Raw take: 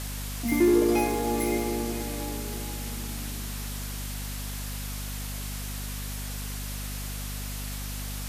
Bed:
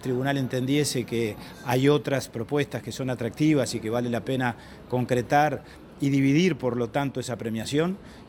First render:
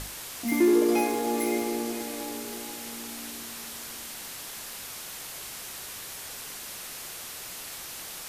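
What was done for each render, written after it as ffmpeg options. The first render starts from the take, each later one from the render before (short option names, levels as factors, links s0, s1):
-af "bandreject=f=50:t=h:w=6,bandreject=f=100:t=h:w=6,bandreject=f=150:t=h:w=6,bandreject=f=200:t=h:w=6,bandreject=f=250:t=h:w=6,bandreject=f=300:t=h:w=6"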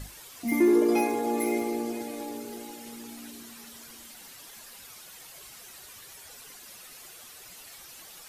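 -af "afftdn=nr=11:nf=-40"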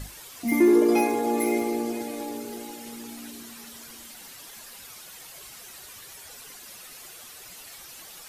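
-af "volume=1.41"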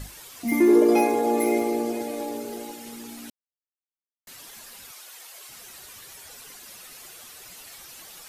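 -filter_complex "[0:a]asettb=1/sr,asplit=3[s0][s1][s2];[s0]atrim=end=0.694[s3];[s1]atrim=start=0.69:end=2.72,asetpts=PTS-STARTPTS,afade=t=in:d=0.004:c=qsin,afade=t=out:st=2.026:d=0.004:c=qsin,equalizer=f=570:w=1.6:g=6[s4];[s2]atrim=start=2.716[s5];[s3][s4]acrossfade=d=0.004:c1=hsin:c2=qsin[s6];[s6][s5]acrossfade=d=0.004:c1=qsin:c2=hsin,asettb=1/sr,asplit=3[s7][s8][s9];[s7]atrim=end=4.914[s10];[s8]atrim=start=4.91:end=5.49,asetpts=PTS-STARTPTS,afade=t=in:d=0.004:c=qsin,afade=t=out:st=0.576:d=0.004:c=qsin,highpass=480[s11];[s9]atrim=start=5.486[s12];[s10][s11]acrossfade=d=0.004:c1=hsin:c2=qsin[s13];[s13][s12]acrossfade=d=0.004:c1=qsin:c2=hsin,asplit=3[s14][s15][s16];[s14]atrim=end=3.3,asetpts=PTS-STARTPTS,afade=t=out:st=3.296:d=0.004:c=hsin[s17];[s15]atrim=start=3.3:end=4.27,asetpts=PTS-STARTPTS,volume=0[s18];[s16]atrim=start=4.27,asetpts=PTS-STARTPTS,afade=t=in:d=0.004:c=hsin[s19];[s17][s18][s19]concat=n=3:v=0:a=1"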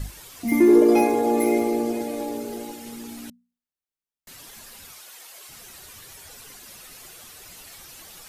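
-af "lowshelf=f=200:g=9,bandreject=f=60:t=h:w=6,bandreject=f=120:t=h:w=6,bandreject=f=180:t=h:w=6,bandreject=f=240:t=h:w=6"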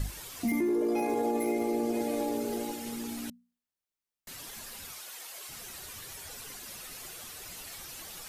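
-af "alimiter=limit=0.141:level=0:latency=1:release=36,acompressor=threshold=0.0447:ratio=3"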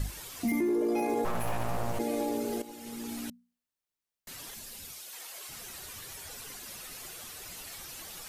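-filter_complex "[0:a]asplit=3[s0][s1][s2];[s0]afade=t=out:st=1.24:d=0.02[s3];[s1]aeval=exprs='abs(val(0))':c=same,afade=t=in:st=1.24:d=0.02,afade=t=out:st=1.98:d=0.02[s4];[s2]afade=t=in:st=1.98:d=0.02[s5];[s3][s4][s5]amix=inputs=3:normalize=0,asettb=1/sr,asplit=3[s6][s7][s8];[s6]atrim=end=4.544[s9];[s7]atrim=start=4.54:end=5.13,asetpts=PTS-STARTPTS,afade=t=in:d=0.004:c=qsin,afade=t=out:st=0.586:d=0.004:c=qsin,equalizer=f=1200:w=0.71:g=-7.5[s10];[s8]atrim=start=5.126[s11];[s9][s10]acrossfade=d=0.004:c1=hsin:c2=qsin[s12];[s12][s11]acrossfade=d=0.004:c1=qsin:c2=hsin,asplit=2[s13][s14];[s13]atrim=end=2.62,asetpts=PTS-STARTPTS,afade=t=out:st=2.616:d=0.004:c=hsin:silence=0.223872[s15];[s14]atrim=start=2.62,asetpts=PTS-STARTPTS,afade=t=in:d=0.53:silence=0.223872[s16];[s15][s16]concat=n=2:v=0:a=1"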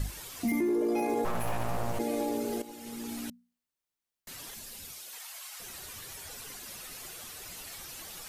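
-filter_complex "[0:a]asettb=1/sr,asplit=3[s0][s1][s2];[s0]atrim=end=5.184[s3];[s1]atrim=start=5.18:end=5.6,asetpts=PTS-STARTPTS,afade=t=in:d=0.004:c=qsin,afade=t=out:st=0.416:d=0.004:c=qsin,highpass=f=720:w=0.5412,highpass=f=720:w=1.3066[s4];[s2]atrim=start=5.596[s5];[s3][s4]acrossfade=d=0.004:c1=hsin:c2=qsin[s6];[s6][s5]acrossfade=d=0.004:c1=qsin:c2=hsin"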